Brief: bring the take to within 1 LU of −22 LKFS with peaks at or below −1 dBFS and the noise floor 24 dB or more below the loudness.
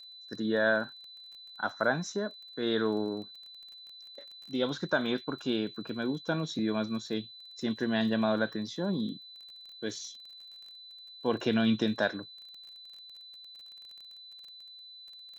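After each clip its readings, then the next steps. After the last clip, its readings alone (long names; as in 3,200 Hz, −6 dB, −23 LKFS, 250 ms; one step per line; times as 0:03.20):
crackle rate 21 per second; interfering tone 4,000 Hz; level of the tone −47 dBFS; integrated loudness −31.5 LKFS; sample peak −15.0 dBFS; target loudness −22.0 LKFS
→ click removal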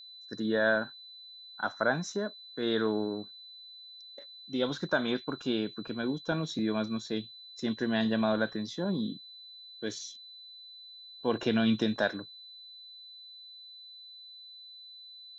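crackle rate 0 per second; interfering tone 4,000 Hz; level of the tone −47 dBFS
→ notch filter 4,000 Hz, Q 30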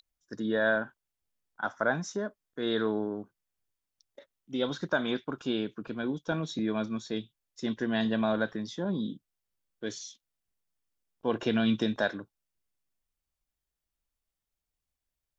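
interfering tone none found; integrated loudness −31.5 LKFS; sample peak −15.0 dBFS; target loudness −22.0 LKFS
→ level +9.5 dB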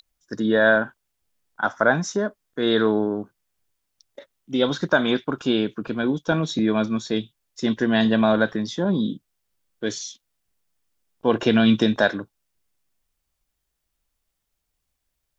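integrated loudness −22.0 LKFS; sample peak −5.5 dBFS; background noise floor −78 dBFS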